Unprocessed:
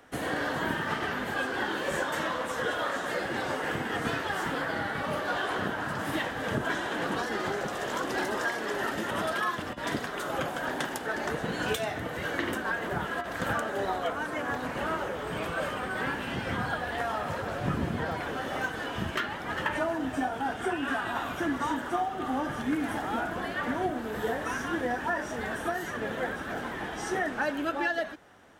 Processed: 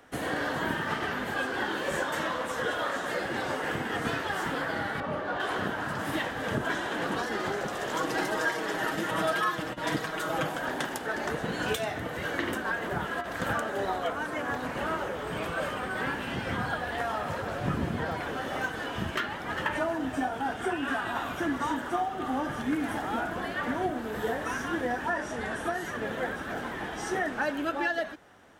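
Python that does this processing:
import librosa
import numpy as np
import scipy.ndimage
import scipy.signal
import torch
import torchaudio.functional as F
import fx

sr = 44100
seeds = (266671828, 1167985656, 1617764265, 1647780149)

y = fx.lowpass(x, sr, hz=1500.0, slope=6, at=(5.0, 5.4))
y = fx.comb(y, sr, ms=6.3, depth=0.65, at=(7.94, 10.56))
y = fx.brickwall_lowpass(y, sr, high_hz=12000.0, at=(25.07, 25.85))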